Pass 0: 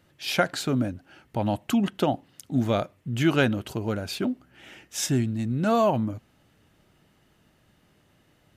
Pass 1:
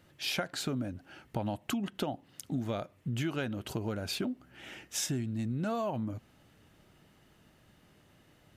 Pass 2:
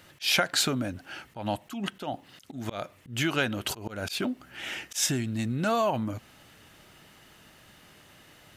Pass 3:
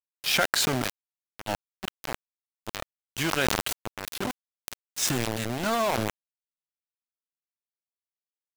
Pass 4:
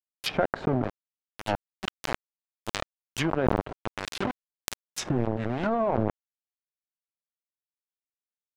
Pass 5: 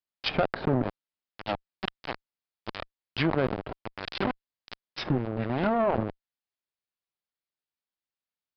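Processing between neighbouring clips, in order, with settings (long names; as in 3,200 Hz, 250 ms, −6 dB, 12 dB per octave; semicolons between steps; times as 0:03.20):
downward compressor 6 to 1, threshold −31 dBFS, peak gain reduction 14 dB
tilt shelving filter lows −5 dB, about 670 Hz; volume swells 171 ms; level +8 dB
centre clipping without the shift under −26 dBFS; level that may fall only so fast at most 22 dB per second
power curve on the samples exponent 1.4; treble cut that deepens with the level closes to 760 Hz, closed at −29 dBFS; level +8.5 dB
tube saturation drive 20 dB, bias 0.45; downsampling to 11,025 Hz; level +4 dB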